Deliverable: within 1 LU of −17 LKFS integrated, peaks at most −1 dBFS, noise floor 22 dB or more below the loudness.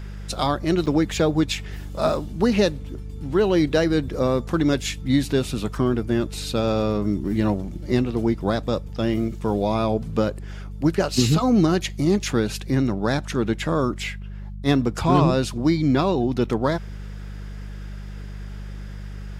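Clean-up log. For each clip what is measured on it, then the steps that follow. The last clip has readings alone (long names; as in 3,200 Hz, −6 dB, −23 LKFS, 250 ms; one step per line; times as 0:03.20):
number of dropouts 1; longest dropout 6.8 ms; mains hum 50 Hz; hum harmonics up to 200 Hz; level of the hum −32 dBFS; integrated loudness −22.5 LKFS; sample peak −7.0 dBFS; target loudness −17.0 LKFS
→ repair the gap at 0:00.86, 6.8 ms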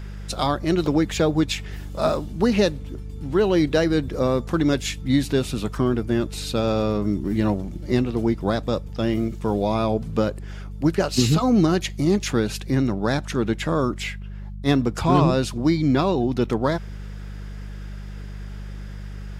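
number of dropouts 0; mains hum 50 Hz; hum harmonics up to 200 Hz; level of the hum −32 dBFS
→ hum removal 50 Hz, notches 4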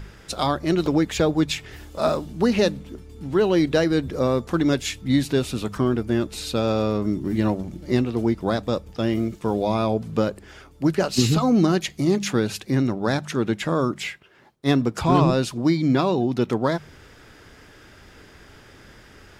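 mains hum none found; integrated loudness −22.5 LKFS; sample peak −7.0 dBFS; target loudness −17.0 LKFS
→ level +5.5 dB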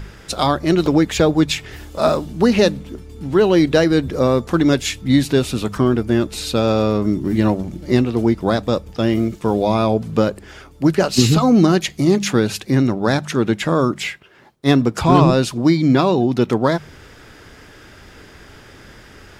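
integrated loudness −17.0 LKFS; sample peak −1.5 dBFS; background noise floor −43 dBFS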